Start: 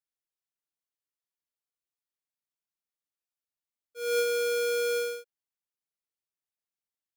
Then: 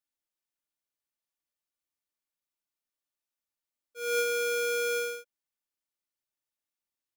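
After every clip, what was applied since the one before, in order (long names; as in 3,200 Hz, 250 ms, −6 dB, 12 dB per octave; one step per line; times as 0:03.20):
comb filter 3.4 ms, depth 43%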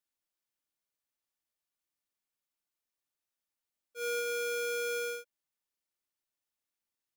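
downward compressor, threshold −31 dBFS, peak gain reduction 7 dB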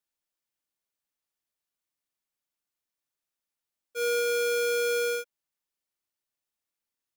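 leveller curve on the samples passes 2
level +4.5 dB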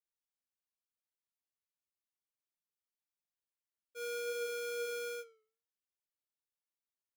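flanger 0.46 Hz, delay 8 ms, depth 5.9 ms, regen +81%
level −8 dB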